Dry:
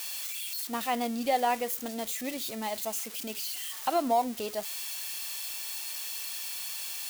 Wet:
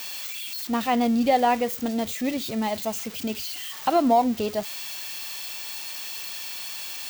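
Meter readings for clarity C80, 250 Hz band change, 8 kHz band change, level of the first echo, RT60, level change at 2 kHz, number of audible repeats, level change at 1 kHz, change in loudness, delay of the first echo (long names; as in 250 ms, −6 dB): no reverb audible, +11.0 dB, −0.5 dB, no echo audible, no reverb audible, +5.0 dB, no echo audible, +6.0 dB, +5.5 dB, no echo audible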